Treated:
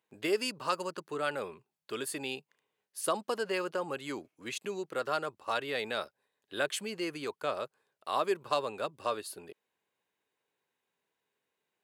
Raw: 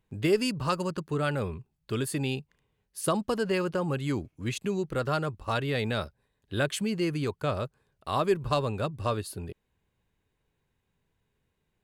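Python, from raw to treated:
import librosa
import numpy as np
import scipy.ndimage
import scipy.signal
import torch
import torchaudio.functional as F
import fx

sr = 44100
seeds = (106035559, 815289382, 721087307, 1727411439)

y = scipy.signal.sosfilt(scipy.signal.butter(2, 420.0, 'highpass', fs=sr, output='sos'), x)
y = y * librosa.db_to_amplitude(-2.0)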